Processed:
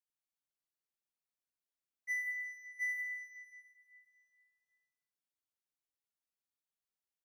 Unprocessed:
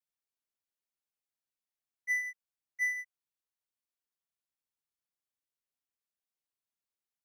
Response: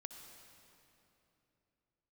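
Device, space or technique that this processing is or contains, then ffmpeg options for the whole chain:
cave: -filter_complex "[0:a]asettb=1/sr,asplit=3[a][b][c];[a]atrim=end=2.274[d];[b]atrim=start=2.27:end=2.89,asetpts=PTS-STARTPTS,afade=t=in:d=0.004:c=qsin,afade=t=out:st=0.616:d=0.004:c=qsin,bass=f=250:g=13,treble=f=4k:g=-3[e];[c]atrim=start=2.886[f];[d][e]acrossfade=d=0.004:c1=hsin:c2=qsin[g];[g][f]acrossfade=d=0.004:c1=qsin:c2=hsin,aecho=1:1:172:0.237[h];[1:a]atrim=start_sample=2205[i];[h][i]afir=irnorm=-1:irlink=0"

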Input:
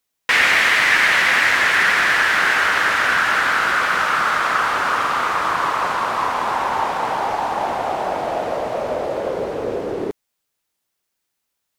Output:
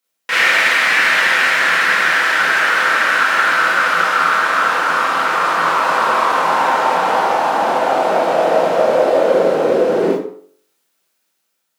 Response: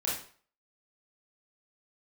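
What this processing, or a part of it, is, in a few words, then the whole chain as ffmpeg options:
far laptop microphone: -filter_complex "[0:a]bandreject=f=47.53:t=h:w=4,bandreject=f=95.06:t=h:w=4,bandreject=f=142.59:t=h:w=4,bandreject=f=190.12:t=h:w=4,bandreject=f=237.65:t=h:w=4,bandreject=f=285.18:t=h:w=4,bandreject=f=332.71:t=h:w=4,bandreject=f=380.24:t=h:w=4,bandreject=f=427.77:t=h:w=4,bandreject=f=475.3:t=h:w=4,bandreject=f=522.83:t=h:w=4,bandreject=f=570.36:t=h:w=4,bandreject=f=617.89:t=h:w=4,bandreject=f=665.42:t=h:w=4,bandreject=f=712.95:t=h:w=4,bandreject=f=760.48:t=h:w=4,bandreject=f=808.01:t=h:w=4,bandreject=f=855.54:t=h:w=4,bandreject=f=903.07:t=h:w=4,bandreject=f=950.6:t=h:w=4,bandreject=f=998.13:t=h:w=4,bandreject=f=1.04566k:t=h:w=4,bandreject=f=1.09319k:t=h:w=4,bandreject=f=1.14072k:t=h:w=4,bandreject=f=1.18825k:t=h:w=4,bandreject=f=1.23578k:t=h:w=4,bandreject=f=1.28331k:t=h:w=4,bandreject=f=1.33084k:t=h:w=4,bandreject=f=1.37837k:t=h:w=4,bandreject=f=1.4259k:t=h:w=4[a];[1:a]atrim=start_sample=2205[b];[a][b]afir=irnorm=-1:irlink=0,highpass=f=160:w=0.5412,highpass=f=160:w=1.3066,dynaudnorm=f=300:g=7:m=11.5dB,volume=-1dB"

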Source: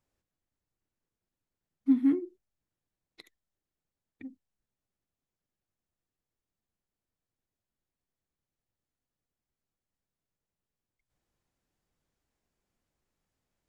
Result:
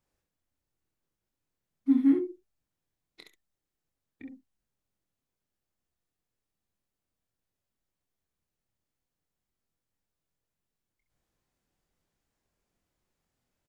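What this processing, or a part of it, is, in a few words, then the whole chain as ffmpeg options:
slapback doubling: -filter_complex "[0:a]asplit=3[a][b][c];[b]adelay=25,volume=-5.5dB[d];[c]adelay=66,volume=-6dB[e];[a][d][e]amix=inputs=3:normalize=0"

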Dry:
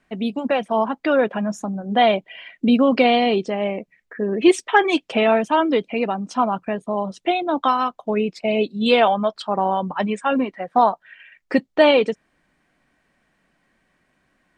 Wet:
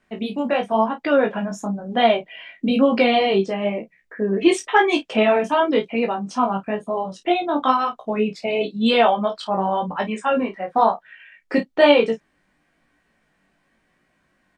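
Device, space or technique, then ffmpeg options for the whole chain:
double-tracked vocal: -filter_complex "[0:a]asplit=2[a][b];[b]adelay=31,volume=-10dB[c];[a][c]amix=inputs=2:normalize=0,flanger=delay=17:depth=3.9:speed=1,volume=2.5dB"

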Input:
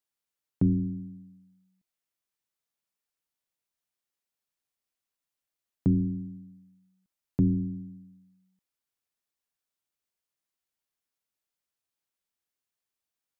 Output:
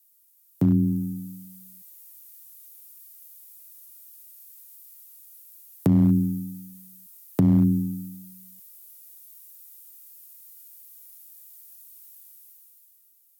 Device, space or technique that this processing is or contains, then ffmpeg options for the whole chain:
FM broadcast chain: -filter_complex "[0:a]highpass=f=53:p=1,dynaudnorm=f=110:g=17:m=13dB,acrossover=split=120|250[a][b][c];[a]acompressor=threshold=-25dB:ratio=4[d];[b]acompressor=threshold=-17dB:ratio=4[e];[c]acompressor=threshold=-26dB:ratio=4[f];[d][e][f]amix=inputs=3:normalize=0,aemphasis=mode=production:type=50fm,alimiter=limit=-12.5dB:level=0:latency=1:release=97,asoftclip=type=hard:threshold=-14.5dB,lowpass=f=15k:w=0.5412,lowpass=f=15k:w=1.3066,aemphasis=mode=production:type=50fm,volume=3dB"

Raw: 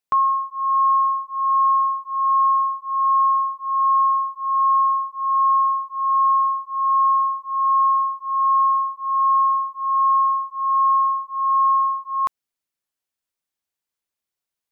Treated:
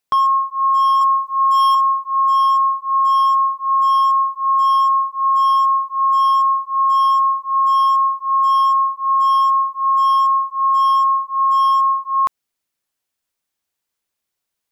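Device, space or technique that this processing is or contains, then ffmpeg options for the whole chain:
clipper into limiter: -filter_complex "[0:a]asoftclip=type=hard:threshold=-15dB,alimiter=limit=-18dB:level=0:latency=1,asettb=1/sr,asplit=3[a][b][c];[a]atrim=end=1.014[d];[b]atrim=start=1.01:end=1.75,asetpts=PTS-STARTPTS,afade=t=in:d=0.004:c=qsin,afade=t=out:st=0.736:d=0.004:c=qsin,tiltshelf=f=970:g=-7.5[e];[c]atrim=start=1.746[f];[d][e]acrossfade=d=0.004:c1=hsin:c2=qsin[g];[g][f]acrossfade=d=0.004:c1=qsin:c2=hsin,volume=6.5dB"

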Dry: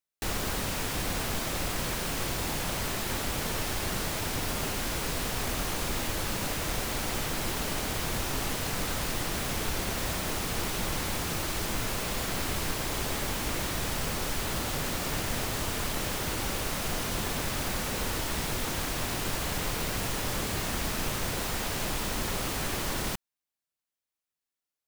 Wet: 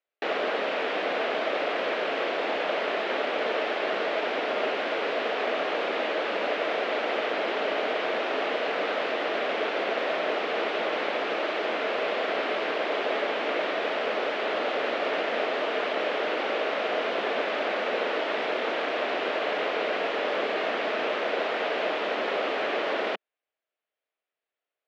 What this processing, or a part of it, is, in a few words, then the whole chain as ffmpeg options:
phone earpiece: -af "highpass=f=220:w=0.5412,highpass=f=220:w=1.3066,highpass=380,equalizer=f=450:t=q:w=4:g=6,equalizer=f=630:t=q:w=4:g=8,equalizer=f=960:t=q:w=4:g=-4,lowpass=f=3.1k:w=0.5412,lowpass=f=3.1k:w=1.3066,volume=6.5dB"

